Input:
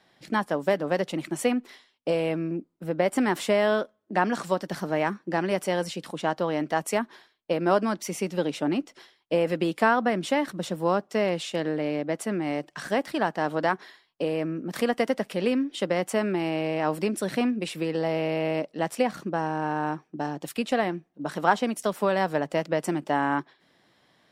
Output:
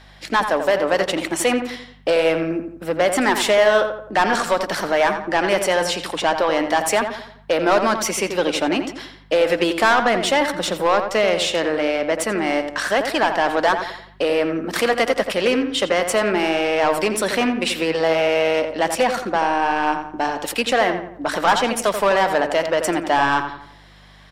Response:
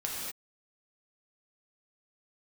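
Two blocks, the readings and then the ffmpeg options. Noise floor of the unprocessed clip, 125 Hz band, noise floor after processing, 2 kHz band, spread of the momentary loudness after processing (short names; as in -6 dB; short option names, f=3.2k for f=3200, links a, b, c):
-67 dBFS, -1.0 dB, -46 dBFS, +10.5 dB, 5 LU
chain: -filter_complex "[0:a]lowshelf=f=400:g=-4,asplit=2[a][b];[b]highpass=f=720:p=1,volume=21dB,asoftclip=type=tanh:threshold=-6.5dB[c];[a][c]amix=inputs=2:normalize=0,lowpass=f=7.4k:p=1,volume=-6dB,bandreject=f=50:t=h:w=6,bandreject=f=100:t=h:w=6,bandreject=f=150:t=h:w=6,aeval=exprs='val(0)+0.00447*(sin(2*PI*50*n/s)+sin(2*PI*2*50*n/s)/2+sin(2*PI*3*50*n/s)/3+sin(2*PI*4*50*n/s)/4+sin(2*PI*5*50*n/s)/5)':c=same,asplit=2[d][e];[e]adelay=86,lowpass=f=2.2k:p=1,volume=-7dB,asplit=2[f][g];[g]adelay=86,lowpass=f=2.2k:p=1,volume=0.45,asplit=2[h][i];[i]adelay=86,lowpass=f=2.2k:p=1,volume=0.45,asplit=2[j][k];[k]adelay=86,lowpass=f=2.2k:p=1,volume=0.45,asplit=2[l][m];[m]adelay=86,lowpass=f=2.2k:p=1,volume=0.45[n];[f][h][j][l][n]amix=inputs=5:normalize=0[o];[d][o]amix=inputs=2:normalize=0"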